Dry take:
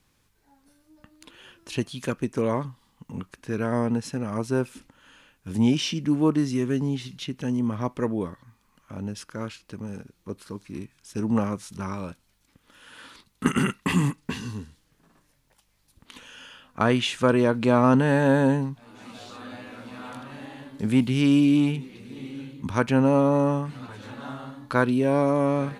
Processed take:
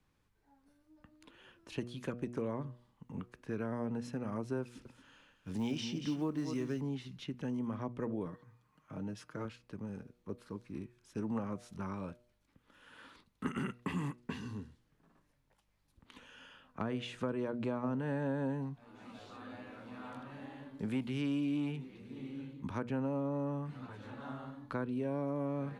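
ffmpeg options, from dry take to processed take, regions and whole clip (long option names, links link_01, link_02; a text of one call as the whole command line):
ffmpeg -i in.wav -filter_complex "[0:a]asettb=1/sr,asplit=3[link_01][link_02][link_03];[link_01]atrim=end=4.624[link_04];[link_02]atrim=start=4.62:end=6.81,asetpts=PTS-STARTPTS,afade=type=in:duration=0.004:curve=qsin,afade=type=out:start_time=2.186:duration=0.004:curve=qsin,equalizer=frequency=5200:width_type=o:width=1.5:gain=6.5,acrusher=bits=8:mode=log:mix=0:aa=0.000001,aecho=1:1:231:0.282,atrim=end_sample=96579[link_05];[link_03]atrim=start=6.806[link_06];[link_04][link_05]acrossfade=duration=0.004:curve1=hsin:curve2=qsin[link_07];[link_07][link_06]acrossfade=duration=0.004:curve1=qsin:curve2=hsin,asettb=1/sr,asplit=3[link_08][link_09][link_10];[link_08]atrim=end=8.254[link_11];[link_09]atrim=start=8.25:end=9.45,asetpts=PTS-STARTPTS,afade=type=in:duration=0.004:curve=qsin,afade=type=out:start_time=1.196:duration=0.004:curve=qsin,highpass=62,aecho=1:1:6.5:0.57,atrim=end_sample=52920[link_12];[link_10]atrim=start=9.446[link_13];[link_11][link_12]acrossfade=duration=0.004:curve1=hsin:curve2=qsin[link_14];[link_14][link_13]acrossfade=duration=0.004:curve1=qsin:curve2=hsin,highshelf=frequency=3300:gain=-11.5,bandreject=frequency=120.7:width_type=h:width=4,bandreject=frequency=241.4:width_type=h:width=4,bandreject=frequency=362.1:width_type=h:width=4,bandreject=frequency=482.8:width_type=h:width=4,bandreject=frequency=603.5:width_type=h:width=4,bandreject=frequency=724.2:width_type=h:width=4,acrossover=split=110|410[link_15][link_16][link_17];[link_15]acompressor=threshold=-46dB:ratio=4[link_18];[link_16]acompressor=threshold=-30dB:ratio=4[link_19];[link_17]acompressor=threshold=-34dB:ratio=4[link_20];[link_18][link_19][link_20]amix=inputs=3:normalize=0,volume=-7dB" out.wav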